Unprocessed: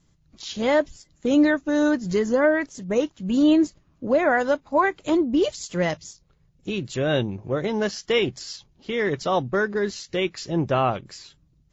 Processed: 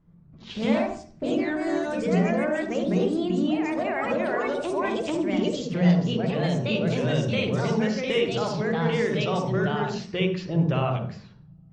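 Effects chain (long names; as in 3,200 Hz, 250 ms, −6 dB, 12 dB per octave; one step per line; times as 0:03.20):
delay with pitch and tempo change per echo 114 ms, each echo +2 semitones, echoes 2
low-pass that shuts in the quiet parts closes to 1,300 Hz, open at −16.5 dBFS
downward compressor 4 to 1, threshold −28 dBFS, peak gain reduction 15 dB
on a send at −3.5 dB: convolution reverb RT60 0.45 s, pre-delay 46 ms
on the sum: dynamic equaliser 2,700 Hz, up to +7 dB, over −51 dBFS, Q 1.9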